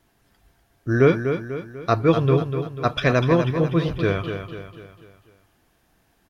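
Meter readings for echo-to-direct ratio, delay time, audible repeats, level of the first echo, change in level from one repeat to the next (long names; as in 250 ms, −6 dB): −7.0 dB, 246 ms, 5, −8.0 dB, −6.5 dB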